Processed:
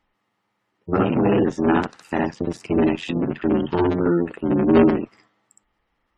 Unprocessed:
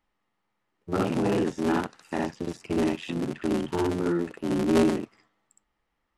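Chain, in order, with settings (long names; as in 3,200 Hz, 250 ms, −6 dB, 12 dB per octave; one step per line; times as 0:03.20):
harmonic generator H 3 −26 dB, 4 −18 dB, 6 −20 dB, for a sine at −8.5 dBFS
gate on every frequency bin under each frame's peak −30 dB strong
level +8 dB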